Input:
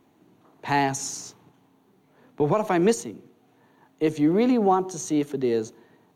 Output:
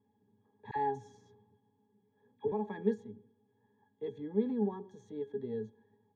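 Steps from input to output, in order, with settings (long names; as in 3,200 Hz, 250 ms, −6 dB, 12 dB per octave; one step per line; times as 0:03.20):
resonances in every octave G#, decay 0.11 s
0:00.71–0:02.52: all-pass dispersion lows, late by 52 ms, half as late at 910 Hz
level −3.5 dB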